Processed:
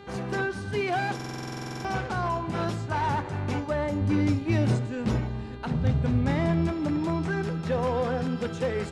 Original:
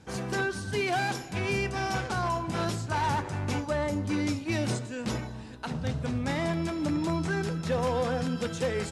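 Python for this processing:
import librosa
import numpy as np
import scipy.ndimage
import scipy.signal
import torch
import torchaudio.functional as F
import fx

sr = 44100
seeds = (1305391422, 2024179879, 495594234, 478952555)

y = fx.high_shelf(x, sr, hz=4100.0, db=-11.5)
y = fx.dmg_buzz(y, sr, base_hz=400.0, harmonics=11, level_db=-49.0, tilt_db=-6, odd_only=False)
y = fx.low_shelf(y, sr, hz=190.0, db=9.0, at=(4.01, 6.73))
y = fx.buffer_glitch(y, sr, at_s=(1.15,), block=2048, repeats=14)
y = y * 10.0 ** (1.5 / 20.0)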